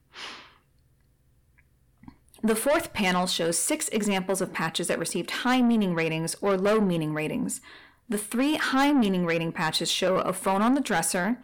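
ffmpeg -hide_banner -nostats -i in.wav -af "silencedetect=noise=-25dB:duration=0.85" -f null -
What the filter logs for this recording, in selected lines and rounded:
silence_start: 0.00
silence_end: 2.44 | silence_duration: 2.44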